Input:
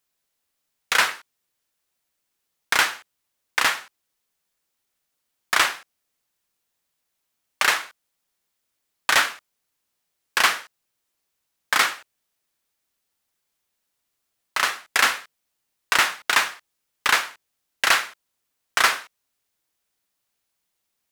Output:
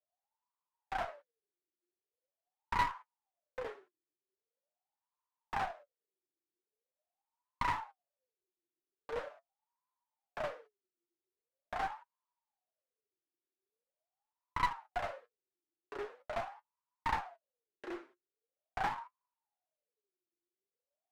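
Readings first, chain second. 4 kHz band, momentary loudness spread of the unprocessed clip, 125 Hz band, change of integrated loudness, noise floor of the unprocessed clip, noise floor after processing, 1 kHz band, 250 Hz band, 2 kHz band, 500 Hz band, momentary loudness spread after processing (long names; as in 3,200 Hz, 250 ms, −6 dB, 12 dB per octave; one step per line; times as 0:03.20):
−28.5 dB, 13 LU, can't be measured, −18.5 dB, −78 dBFS, below −85 dBFS, −11.5 dB, −8.5 dB, −23.5 dB, −7.5 dB, 17 LU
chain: LFO wah 0.43 Hz 340–1,000 Hz, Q 18
flanger 0.76 Hz, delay 6.4 ms, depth 2.5 ms, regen +46%
asymmetric clip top −51 dBFS
level +11 dB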